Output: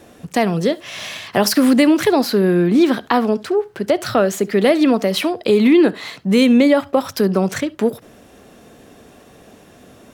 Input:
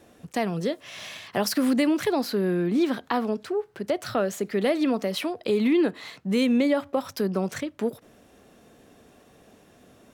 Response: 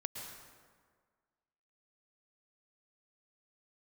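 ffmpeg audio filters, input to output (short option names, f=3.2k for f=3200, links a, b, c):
-filter_complex "[0:a]asplit=2[a][b];[1:a]atrim=start_sample=2205,afade=t=out:st=0.16:d=0.01,atrim=end_sample=7497,asetrate=70560,aresample=44100[c];[b][c]afir=irnorm=-1:irlink=0,volume=2.5dB[d];[a][d]amix=inputs=2:normalize=0,volume=5.5dB"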